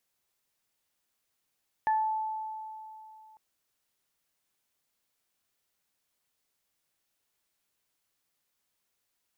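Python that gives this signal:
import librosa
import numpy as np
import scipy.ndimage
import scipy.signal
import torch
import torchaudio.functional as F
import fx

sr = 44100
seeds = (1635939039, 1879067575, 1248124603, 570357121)

y = fx.additive(sr, length_s=1.5, hz=872.0, level_db=-22.5, upper_db=(-9,), decay_s=2.92, upper_decays_s=(0.32,))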